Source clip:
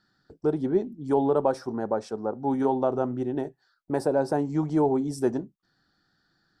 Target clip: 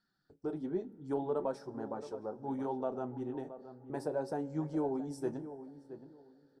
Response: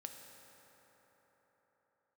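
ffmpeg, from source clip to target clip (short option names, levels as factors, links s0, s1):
-filter_complex "[0:a]flanger=delay=4.3:depth=7.2:regen=-42:speed=0.69:shape=sinusoidal,asplit=2[s0][s1];[s1]adelay=672,lowpass=f=1300:p=1,volume=0.251,asplit=2[s2][s3];[s3]adelay=672,lowpass=f=1300:p=1,volume=0.23,asplit=2[s4][s5];[s5]adelay=672,lowpass=f=1300:p=1,volume=0.23[s6];[s0][s2][s4][s6]amix=inputs=4:normalize=0,asplit=2[s7][s8];[1:a]atrim=start_sample=2205,adelay=32[s9];[s8][s9]afir=irnorm=-1:irlink=0,volume=0.237[s10];[s7][s10]amix=inputs=2:normalize=0,volume=0.398"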